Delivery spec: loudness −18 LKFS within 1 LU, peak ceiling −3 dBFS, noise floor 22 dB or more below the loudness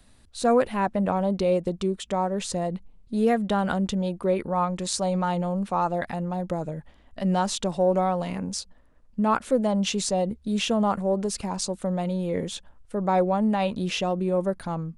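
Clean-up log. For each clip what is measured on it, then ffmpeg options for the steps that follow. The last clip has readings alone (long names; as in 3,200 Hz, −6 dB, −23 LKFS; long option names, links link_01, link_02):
integrated loudness −26.0 LKFS; sample peak −10.0 dBFS; target loudness −18.0 LKFS
→ -af "volume=8dB,alimiter=limit=-3dB:level=0:latency=1"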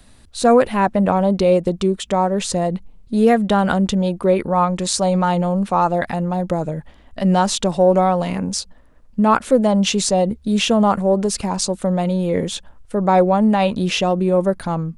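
integrated loudness −18.0 LKFS; sample peak −3.0 dBFS; background noise floor −47 dBFS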